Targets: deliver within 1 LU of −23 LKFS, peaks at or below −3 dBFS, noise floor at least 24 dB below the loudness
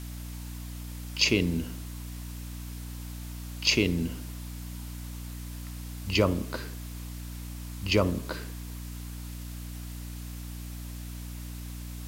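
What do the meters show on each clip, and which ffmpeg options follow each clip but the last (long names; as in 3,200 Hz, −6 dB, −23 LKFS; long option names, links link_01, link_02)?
mains hum 60 Hz; hum harmonics up to 300 Hz; level of the hum −37 dBFS; background noise floor −39 dBFS; target noise floor −57 dBFS; integrated loudness −32.5 LKFS; sample peak −10.0 dBFS; target loudness −23.0 LKFS
→ -af "bandreject=frequency=60:width_type=h:width=6,bandreject=frequency=120:width_type=h:width=6,bandreject=frequency=180:width_type=h:width=6,bandreject=frequency=240:width_type=h:width=6,bandreject=frequency=300:width_type=h:width=6"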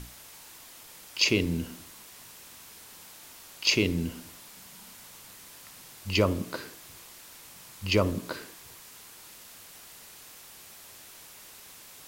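mains hum none found; background noise floor −50 dBFS; target noise floor −52 dBFS
→ -af "afftdn=noise_reduction=6:noise_floor=-50"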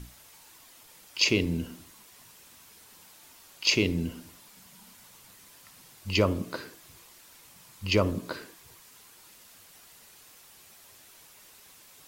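background noise floor −55 dBFS; integrated loudness −28.0 LKFS; sample peak −10.0 dBFS; target loudness −23.0 LKFS
→ -af "volume=5dB"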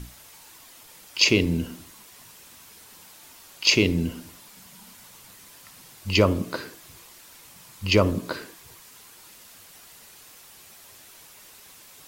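integrated loudness −23.0 LKFS; sample peak −5.0 dBFS; background noise floor −50 dBFS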